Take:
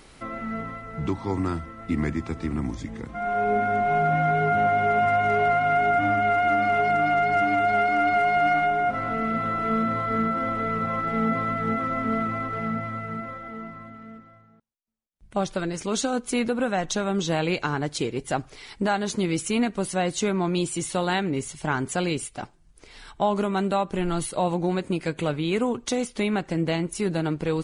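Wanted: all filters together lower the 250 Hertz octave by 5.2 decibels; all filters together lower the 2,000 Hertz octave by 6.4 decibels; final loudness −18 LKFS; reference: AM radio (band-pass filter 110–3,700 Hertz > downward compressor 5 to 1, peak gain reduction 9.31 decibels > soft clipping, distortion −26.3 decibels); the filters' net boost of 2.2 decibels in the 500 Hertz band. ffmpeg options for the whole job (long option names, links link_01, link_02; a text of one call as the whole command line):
ffmpeg -i in.wav -af "highpass=110,lowpass=3700,equalizer=frequency=250:width_type=o:gain=-9,equalizer=frequency=500:width_type=o:gain=6.5,equalizer=frequency=2000:width_type=o:gain=-9,acompressor=threshold=-26dB:ratio=5,asoftclip=threshold=-18.5dB,volume=13.5dB" out.wav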